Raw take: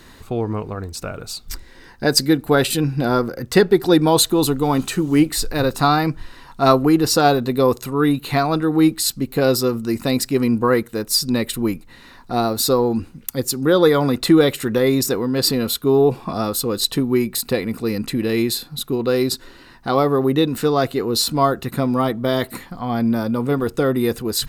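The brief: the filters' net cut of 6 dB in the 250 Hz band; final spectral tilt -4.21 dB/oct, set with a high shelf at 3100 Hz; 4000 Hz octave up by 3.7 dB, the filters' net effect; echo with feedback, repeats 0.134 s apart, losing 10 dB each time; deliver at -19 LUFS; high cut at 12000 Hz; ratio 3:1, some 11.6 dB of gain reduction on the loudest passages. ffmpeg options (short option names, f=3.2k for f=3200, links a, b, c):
-af "lowpass=12k,equalizer=f=250:t=o:g=-8,highshelf=f=3.1k:g=-5,equalizer=f=4k:t=o:g=8,acompressor=threshold=-26dB:ratio=3,aecho=1:1:134|268|402|536:0.316|0.101|0.0324|0.0104,volume=8.5dB"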